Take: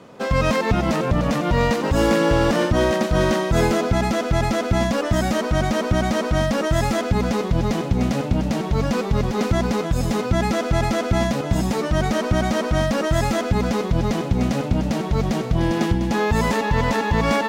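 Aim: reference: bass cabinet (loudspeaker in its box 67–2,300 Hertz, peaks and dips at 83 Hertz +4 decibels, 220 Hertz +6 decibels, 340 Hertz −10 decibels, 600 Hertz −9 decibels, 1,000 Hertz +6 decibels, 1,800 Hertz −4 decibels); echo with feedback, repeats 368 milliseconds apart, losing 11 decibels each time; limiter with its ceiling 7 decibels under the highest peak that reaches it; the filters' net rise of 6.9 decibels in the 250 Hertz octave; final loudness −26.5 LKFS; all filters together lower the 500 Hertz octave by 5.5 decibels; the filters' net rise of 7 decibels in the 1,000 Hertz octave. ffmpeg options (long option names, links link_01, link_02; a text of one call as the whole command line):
ffmpeg -i in.wav -af "equalizer=frequency=250:width_type=o:gain=6.5,equalizer=frequency=500:width_type=o:gain=-4,equalizer=frequency=1000:width_type=o:gain=6.5,alimiter=limit=-10.5dB:level=0:latency=1,highpass=frequency=67:width=0.5412,highpass=frequency=67:width=1.3066,equalizer=frequency=83:width_type=q:width=4:gain=4,equalizer=frequency=220:width_type=q:width=4:gain=6,equalizer=frequency=340:width_type=q:width=4:gain=-10,equalizer=frequency=600:width_type=q:width=4:gain=-9,equalizer=frequency=1000:width_type=q:width=4:gain=6,equalizer=frequency=1800:width_type=q:width=4:gain=-4,lowpass=frequency=2300:width=0.5412,lowpass=frequency=2300:width=1.3066,aecho=1:1:368|736|1104:0.282|0.0789|0.0221,volume=-8dB" out.wav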